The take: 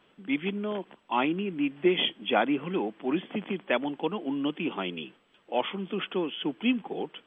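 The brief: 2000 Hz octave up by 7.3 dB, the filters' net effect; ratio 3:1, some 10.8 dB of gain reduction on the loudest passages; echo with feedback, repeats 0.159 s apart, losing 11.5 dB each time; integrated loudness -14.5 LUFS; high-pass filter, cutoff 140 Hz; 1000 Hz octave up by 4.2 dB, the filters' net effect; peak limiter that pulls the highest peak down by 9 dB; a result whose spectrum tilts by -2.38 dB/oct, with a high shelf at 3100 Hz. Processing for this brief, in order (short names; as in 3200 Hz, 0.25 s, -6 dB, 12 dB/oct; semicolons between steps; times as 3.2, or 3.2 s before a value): HPF 140 Hz; bell 1000 Hz +3.5 dB; bell 2000 Hz +7.5 dB; high shelf 3100 Hz +3 dB; compressor 3:1, threshold -31 dBFS; limiter -25 dBFS; feedback echo 0.159 s, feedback 27%, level -11.5 dB; gain +21 dB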